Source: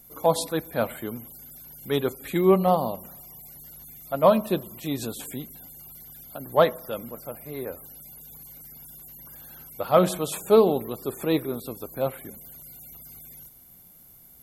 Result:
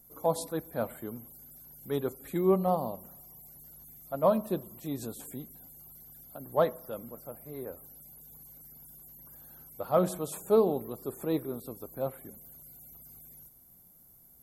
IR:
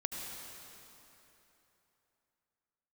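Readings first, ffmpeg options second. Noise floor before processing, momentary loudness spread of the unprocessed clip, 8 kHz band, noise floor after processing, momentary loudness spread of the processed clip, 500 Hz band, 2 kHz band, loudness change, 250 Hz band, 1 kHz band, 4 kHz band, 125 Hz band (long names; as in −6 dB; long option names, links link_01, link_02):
−51 dBFS, 22 LU, −7.5 dB, −58 dBFS, 22 LU, −6.5 dB, −11.5 dB, −6.5 dB, −6.0 dB, −7.5 dB, −13.5 dB, −6.0 dB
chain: -af "equalizer=frequency=2800:width=0.89:gain=-10,volume=-6dB"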